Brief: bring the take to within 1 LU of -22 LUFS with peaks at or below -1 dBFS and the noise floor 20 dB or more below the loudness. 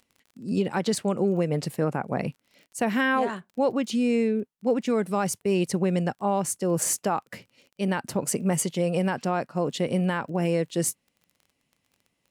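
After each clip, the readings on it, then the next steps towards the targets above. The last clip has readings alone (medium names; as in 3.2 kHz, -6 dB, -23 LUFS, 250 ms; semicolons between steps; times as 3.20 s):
tick rate 23 per s; loudness -26.5 LUFS; peak level -14.0 dBFS; loudness target -22.0 LUFS
-> de-click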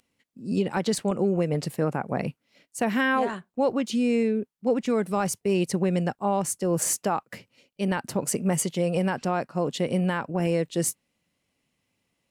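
tick rate 0.081 per s; loudness -26.5 LUFS; peak level -13.5 dBFS; loudness target -22.0 LUFS
-> trim +4.5 dB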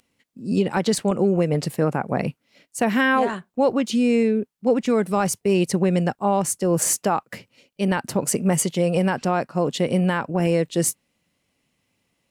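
loudness -22.0 LUFS; peak level -9.0 dBFS; noise floor -74 dBFS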